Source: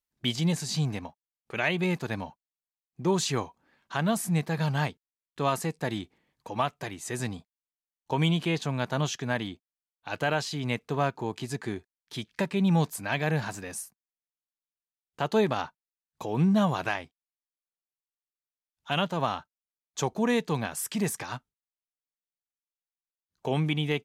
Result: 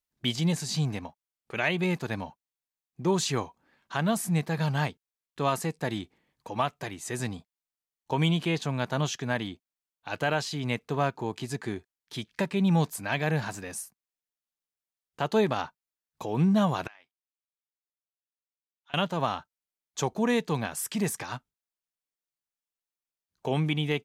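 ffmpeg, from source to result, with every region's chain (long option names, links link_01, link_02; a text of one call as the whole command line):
ffmpeg -i in.wav -filter_complex "[0:a]asettb=1/sr,asplit=3[link_01][link_02][link_03];[link_01]atrim=end=16.874[link_04];[link_02]atrim=start=16.87:end=18.94,asetpts=PTS-STARTPTS,afade=type=in:duration=0.004:curve=qsin,afade=type=out:start_time=2.066:duration=0.004:curve=qsin,lowpass=2300,aderivative,acompressor=threshold=-47dB:ratio=6:attack=3.2:release=140:knee=1:detection=peak[link_05];[link_03]atrim=start=18.936[link_06];[link_04][link_05]acrossfade=duration=0.004:curve1=hsin:curve2=qsin[link_07];[link_07][link_06]acrossfade=duration=0.004:curve1=qsin:curve2=hsin" out.wav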